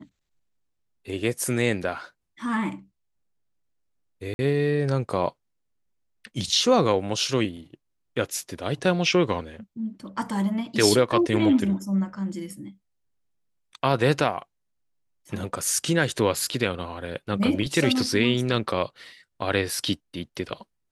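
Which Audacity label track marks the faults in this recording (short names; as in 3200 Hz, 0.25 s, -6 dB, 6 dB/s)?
4.340000	4.390000	gap 51 ms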